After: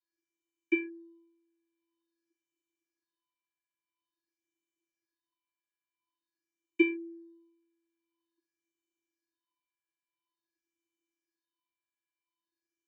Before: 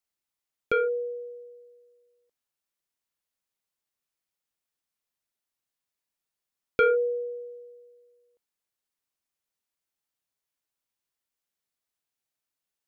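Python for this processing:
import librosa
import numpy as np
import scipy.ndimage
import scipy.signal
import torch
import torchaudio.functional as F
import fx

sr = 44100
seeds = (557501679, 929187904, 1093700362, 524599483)

y = fx.vocoder(x, sr, bands=32, carrier='square', carrier_hz=335.0)
y = fx.phaser_stages(y, sr, stages=6, low_hz=320.0, high_hz=1300.0, hz=0.48, feedback_pct=45)
y = y * librosa.db_to_amplitude(-4.5)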